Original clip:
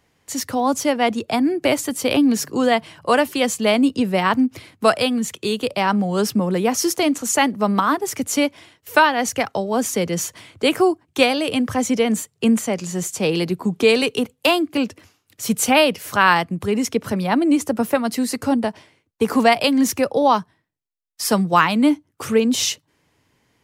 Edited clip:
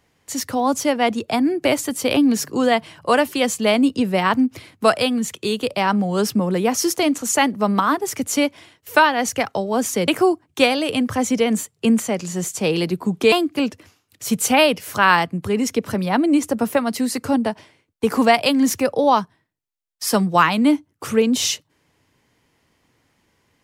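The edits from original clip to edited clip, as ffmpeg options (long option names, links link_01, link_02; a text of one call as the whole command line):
ffmpeg -i in.wav -filter_complex "[0:a]asplit=3[link_01][link_02][link_03];[link_01]atrim=end=10.082[link_04];[link_02]atrim=start=10.668:end=13.912[link_05];[link_03]atrim=start=14.498[link_06];[link_04][link_05]acrossfade=duration=0.004:curve1=hsin:curve2=hsin[link_07];[link_07][link_06]acrossfade=duration=0.004:curve1=hsin:curve2=hsin" out.wav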